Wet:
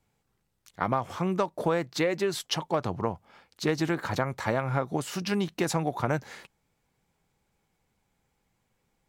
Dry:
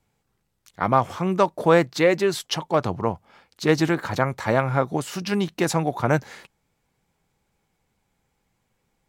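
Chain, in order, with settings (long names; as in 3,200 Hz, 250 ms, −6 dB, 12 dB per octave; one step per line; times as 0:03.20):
downward compressor 6 to 1, threshold −20 dBFS, peak gain reduction 9 dB
level −2.5 dB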